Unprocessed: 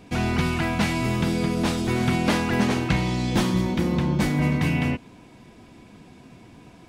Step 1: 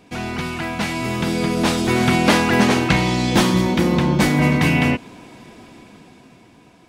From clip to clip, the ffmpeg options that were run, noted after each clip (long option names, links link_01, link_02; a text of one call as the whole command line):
ffmpeg -i in.wav -af "lowshelf=frequency=160:gain=-9,dynaudnorm=framelen=240:gausssize=11:maxgain=11.5dB" out.wav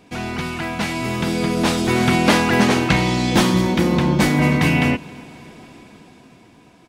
ffmpeg -i in.wav -af "aecho=1:1:270|540|810|1080:0.0631|0.036|0.0205|0.0117" out.wav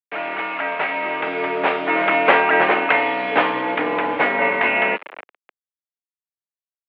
ffmpeg -i in.wav -af "acrusher=bits=4:mix=0:aa=0.000001,highpass=frequency=470:width_type=q:width=0.5412,highpass=frequency=470:width_type=q:width=1.307,lowpass=frequency=2700:width_type=q:width=0.5176,lowpass=frequency=2700:width_type=q:width=0.7071,lowpass=frequency=2700:width_type=q:width=1.932,afreqshift=-51,volume=4.5dB" out.wav